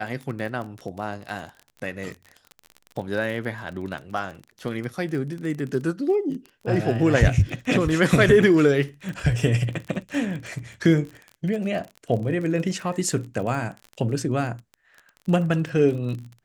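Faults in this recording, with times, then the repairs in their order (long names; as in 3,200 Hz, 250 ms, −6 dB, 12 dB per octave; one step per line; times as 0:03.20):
surface crackle 31 per second −31 dBFS
0:09.09: click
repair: click removal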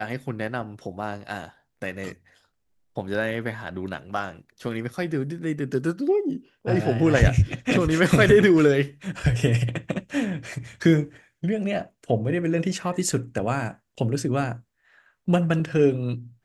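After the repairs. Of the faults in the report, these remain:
none of them is left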